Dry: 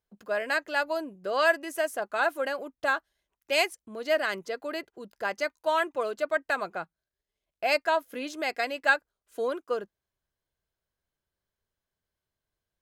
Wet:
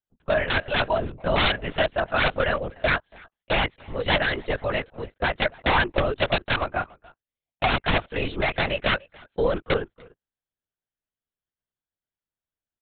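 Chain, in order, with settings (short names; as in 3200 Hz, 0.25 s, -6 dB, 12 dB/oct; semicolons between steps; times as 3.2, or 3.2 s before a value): gate -46 dBFS, range -20 dB; high shelf 2700 Hz +5 dB; in parallel at -0.5 dB: compressor 10:1, threshold -32 dBFS, peak gain reduction 16.5 dB; on the sum: wrapped overs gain 16.5 dB; speakerphone echo 0.29 s, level -21 dB; LPC vocoder at 8 kHz whisper; gain +3.5 dB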